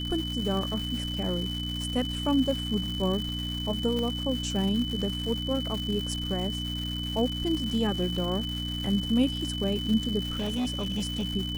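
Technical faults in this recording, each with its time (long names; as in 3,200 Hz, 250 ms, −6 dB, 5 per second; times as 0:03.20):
surface crackle 350 per second −33 dBFS
mains hum 60 Hz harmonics 5 −34 dBFS
whistle 3,000 Hz −34 dBFS
0:03.99: click
0:10.23–0:11.25: clipping −25.5 dBFS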